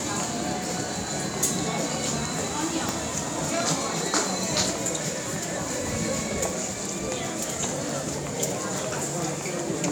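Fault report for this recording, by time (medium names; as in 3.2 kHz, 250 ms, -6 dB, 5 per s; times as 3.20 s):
2.89 s: pop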